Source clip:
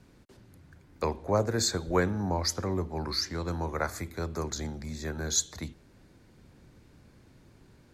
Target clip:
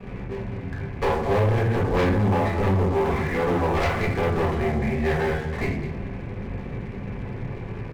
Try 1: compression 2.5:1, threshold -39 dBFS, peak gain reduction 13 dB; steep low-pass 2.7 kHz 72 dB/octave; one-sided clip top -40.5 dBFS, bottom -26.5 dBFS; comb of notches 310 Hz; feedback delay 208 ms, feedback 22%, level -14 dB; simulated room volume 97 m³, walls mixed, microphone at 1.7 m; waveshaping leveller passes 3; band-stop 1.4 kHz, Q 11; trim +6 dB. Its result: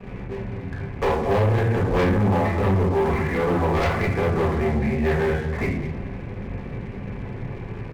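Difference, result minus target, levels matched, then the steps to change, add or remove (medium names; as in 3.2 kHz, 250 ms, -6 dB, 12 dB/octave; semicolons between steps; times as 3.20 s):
one-sided clip: distortion -4 dB
change: one-sided clip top -51 dBFS, bottom -26.5 dBFS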